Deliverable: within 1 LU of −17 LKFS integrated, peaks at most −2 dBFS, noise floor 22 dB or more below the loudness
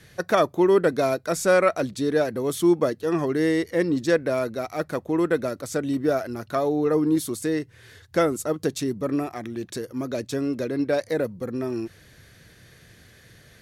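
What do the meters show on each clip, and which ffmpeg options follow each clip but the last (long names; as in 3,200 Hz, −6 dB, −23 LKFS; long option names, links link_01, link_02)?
integrated loudness −24.5 LKFS; sample peak −7.0 dBFS; target loudness −17.0 LKFS
→ -af "volume=7.5dB,alimiter=limit=-2dB:level=0:latency=1"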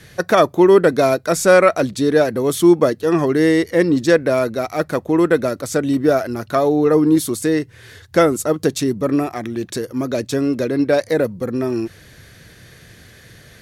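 integrated loudness −17.0 LKFS; sample peak −2.0 dBFS; background noise floor −46 dBFS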